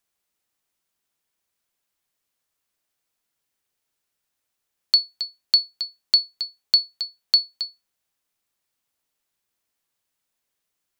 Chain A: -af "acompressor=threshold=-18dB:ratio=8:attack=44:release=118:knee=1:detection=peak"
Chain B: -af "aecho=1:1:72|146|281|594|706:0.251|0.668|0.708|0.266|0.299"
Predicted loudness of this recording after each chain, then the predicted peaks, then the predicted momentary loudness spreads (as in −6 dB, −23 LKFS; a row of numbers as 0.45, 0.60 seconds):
−22.5, −19.5 LKFS; −6.0, −6.0 dBFS; 11, 9 LU